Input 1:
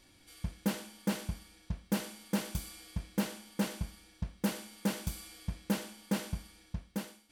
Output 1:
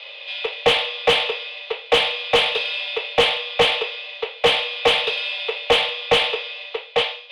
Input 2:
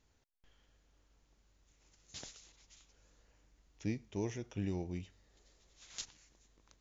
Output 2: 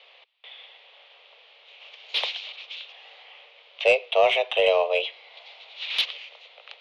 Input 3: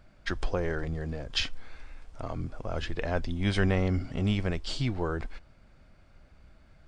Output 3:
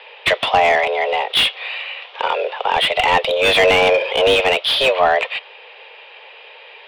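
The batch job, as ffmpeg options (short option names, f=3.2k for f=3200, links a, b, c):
-filter_complex "[0:a]highpass=f=190:t=q:w=0.5412,highpass=f=190:t=q:w=1.307,lowpass=f=3.1k:t=q:w=0.5176,lowpass=f=3.1k:t=q:w=0.7071,lowpass=f=3.1k:t=q:w=1.932,afreqshift=270,aexciter=amount=11.6:drive=4.4:freq=2.4k,asplit=2[a][b];[b]highpass=f=720:p=1,volume=29dB,asoftclip=type=tanh:threshold=-1dB[c];[a][c]amix=inputs=2:normalize=0,lowpass=f=1.1k:p=1,volume=-6dB,volume=2dB"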